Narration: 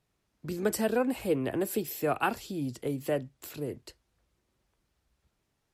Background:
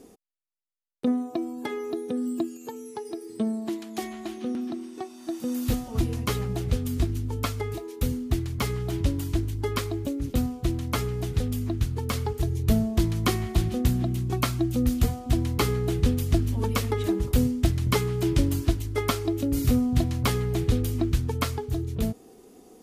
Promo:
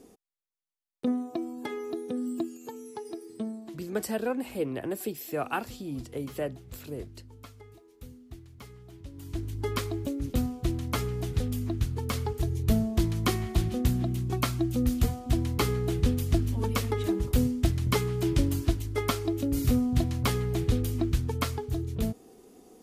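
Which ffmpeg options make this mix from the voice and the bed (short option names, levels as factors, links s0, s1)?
-filter_complex "[0:a]adelay=3300,volume=0.75[s0];[1:a]volume=5.01,afade=t=out:st=3.11:d=0.78:silence=0.149624,afade=t=in:st=9.11:d=0.57:silence=0.133352[s1];[s0][s1]amix=inputs=2:normalize=0"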